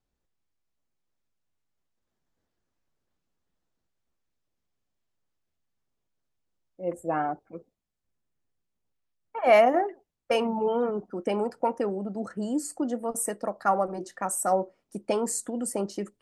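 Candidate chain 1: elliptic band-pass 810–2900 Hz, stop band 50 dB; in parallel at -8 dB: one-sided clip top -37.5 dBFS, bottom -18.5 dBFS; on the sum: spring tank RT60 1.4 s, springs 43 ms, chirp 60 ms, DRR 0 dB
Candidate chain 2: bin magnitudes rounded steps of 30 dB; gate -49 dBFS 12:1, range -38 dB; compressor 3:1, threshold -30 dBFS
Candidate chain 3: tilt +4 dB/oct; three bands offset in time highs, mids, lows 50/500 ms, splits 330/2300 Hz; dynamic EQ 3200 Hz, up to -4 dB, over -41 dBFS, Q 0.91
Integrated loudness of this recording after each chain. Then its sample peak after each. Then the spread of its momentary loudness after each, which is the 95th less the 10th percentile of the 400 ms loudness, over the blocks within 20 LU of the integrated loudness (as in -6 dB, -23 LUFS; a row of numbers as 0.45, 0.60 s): -29.5, -34.5, -25.5 LUFS; -9.5, -18.5, -5.0 dBFS; 18, 8, 18 LU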